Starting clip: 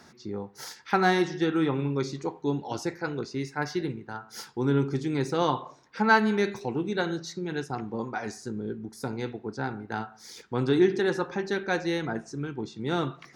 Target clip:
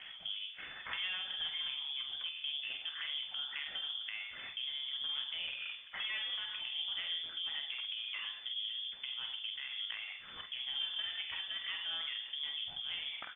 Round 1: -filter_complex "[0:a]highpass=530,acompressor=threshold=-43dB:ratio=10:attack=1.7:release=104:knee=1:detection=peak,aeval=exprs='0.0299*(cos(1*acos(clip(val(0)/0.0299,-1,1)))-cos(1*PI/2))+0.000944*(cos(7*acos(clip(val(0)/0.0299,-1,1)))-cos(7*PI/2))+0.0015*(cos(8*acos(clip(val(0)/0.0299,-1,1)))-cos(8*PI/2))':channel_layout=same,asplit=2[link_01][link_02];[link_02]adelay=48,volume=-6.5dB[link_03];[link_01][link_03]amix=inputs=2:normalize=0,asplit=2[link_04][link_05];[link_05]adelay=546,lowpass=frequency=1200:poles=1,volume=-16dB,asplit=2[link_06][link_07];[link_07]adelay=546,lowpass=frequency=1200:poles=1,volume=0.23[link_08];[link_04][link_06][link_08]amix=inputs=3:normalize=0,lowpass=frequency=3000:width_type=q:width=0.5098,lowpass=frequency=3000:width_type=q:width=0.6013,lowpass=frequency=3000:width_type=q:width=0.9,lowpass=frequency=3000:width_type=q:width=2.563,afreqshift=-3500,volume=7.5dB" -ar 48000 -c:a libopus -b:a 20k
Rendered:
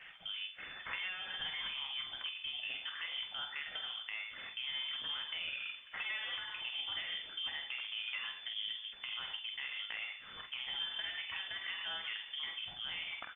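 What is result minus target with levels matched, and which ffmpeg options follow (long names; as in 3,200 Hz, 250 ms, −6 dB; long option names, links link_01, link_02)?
500 Hz band +4.5 dB
-filter_complex "[0:a]acompressor=threshold=-43dB:ratio=10:attack=1.7:release=104:knee=1:detection=peak,aeval=exprs='0.0299*(cos(1*acos(clip(val(0)/0.0299,-1,1)))-cos(1*PI/2))+0.000944*(cos(7*acos(clip(val(0)/0.0299,-1,1)))-cos(7*PI/2))+0.0015*(cos(8*acos(clip(val(0)/0.0299,-1,1)))-cos(8*PI/2))':channel_layout=same,asplit=2[link_01][link_02];[link_02]adelay=48,volume=-6.5dB[link_03];[link_01][link_03]amix=inputs=2:normalize=0,asplit=2[link_04][link_05];[link_05]adelay=546,lowpass=frequency=1200:poles=1,volume=-16dB,asplit=2[link_06][link_07];[link_07]adelay=546,lowpass=frequency=1200:poles=1,volume=0.23[link_08];[link_04][link_06][link_08]amix=inputs=3:normalize=0,lowpass=frequency=3000:width_type=q:width=0.5098,lowpass=frequency=3000:width_type=q:width=0.6013,lowpass=frequency=3000:width_type=q:width=0.9,lowpass=frequency=3000:width_type=q:width=2.563,afreqshift=-3500,volume=7.5dB" -ar 48000 -c:a libopus -b:a 20k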